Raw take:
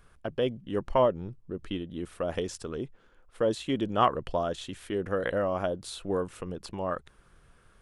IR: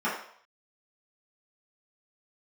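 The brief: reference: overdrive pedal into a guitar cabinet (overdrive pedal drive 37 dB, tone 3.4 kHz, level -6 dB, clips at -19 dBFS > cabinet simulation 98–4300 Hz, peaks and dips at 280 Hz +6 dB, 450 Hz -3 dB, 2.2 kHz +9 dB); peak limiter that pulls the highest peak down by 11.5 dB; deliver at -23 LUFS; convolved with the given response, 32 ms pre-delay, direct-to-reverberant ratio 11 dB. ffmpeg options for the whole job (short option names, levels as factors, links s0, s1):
-filter_complex "[0:a]alimiter=limit=0.0891:level=0:latency=1,asplit=2[s0][s1];[1:a]atrim=start_sample=2205,adelay=32[s2];[s1][s2]afir=irnorm=-1:irlink=0,volume=0.0708[s3];[s0][s3]amix=inputs=2:normalize=0,asplit=2[s4][s5];[s5]highpass=f=720:p=1,volume=70.8,asoftclip=type=tanh:threshold=0.112[s6];[s4][s6]amix=inputs=2:normalize=0,lowpass=f=3400:p=1,volume=0.501,highpass=98,equalizer=f=280:t=q:w=4:g=6,equalizer=f=450:t=q:w=4:g=-3,equalizer=f=2200:t=q:w=4:g=9,lowpass=f=4300:w=0.5412,lowpass=f=4300:w=1.3066,volume=1.41"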